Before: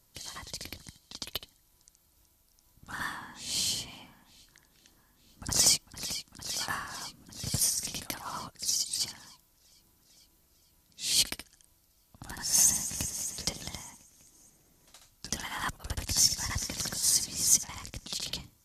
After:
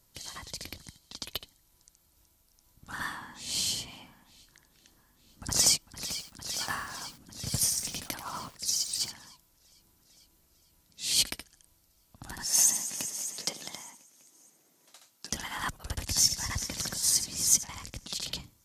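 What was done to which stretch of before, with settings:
5.81–9.1 lo-fi delay 88 ms, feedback 35%, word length 7-bit, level -10 dB
12.45–15.32 HPF 260 Hz

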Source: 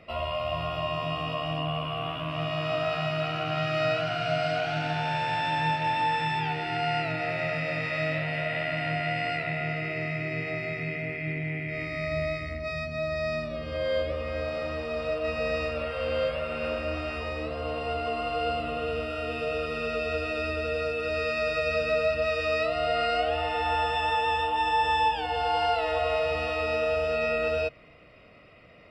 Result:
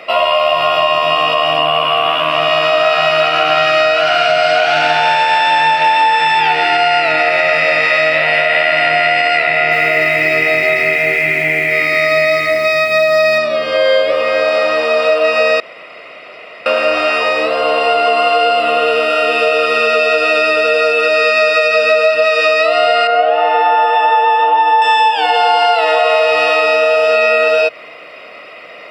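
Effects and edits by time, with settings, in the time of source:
9.51–13.38 lo-fi delay 0.205 s, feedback 35%, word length 9-bit, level -6 dB
15.6–16.66 room tone
23.07–24.82 band-pass 570 Hz, Q 0.55
whole clip: HPF 540 Hz 12 dB/oct; compressor, threshold -30 dBFS; maximiser +23 dB; gain -1 dB

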